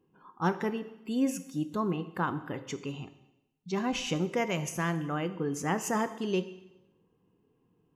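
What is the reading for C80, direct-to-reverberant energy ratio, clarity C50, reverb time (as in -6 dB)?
16.0 dB, 11.0 dB, 14.0 dB, 1.0 s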